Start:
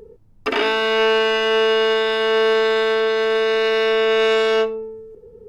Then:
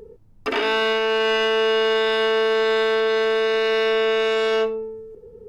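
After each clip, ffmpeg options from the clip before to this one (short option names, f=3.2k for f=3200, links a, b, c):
-af "alimiter=limit=-13dB:level=0:latency=1:release=28"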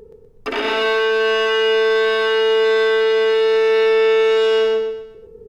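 -af "aecho=1:1:124|248|372|496|620:0.708|0.269|0.102|0.0388|0.0148"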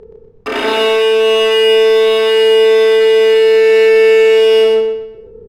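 -filter_complex "[0:a]asplit=2[a][b];[b]adelay=32,volume=-2.5dB[c];[a][c]amix=inputs=2:normalize=0,acrossover=split=670[d][e];[e]adynamicsmooth=sensitivity=6.5:basefreq=3.9k[f];[d][f]amix=inputs=2:normalize=0,volume=3.5dB"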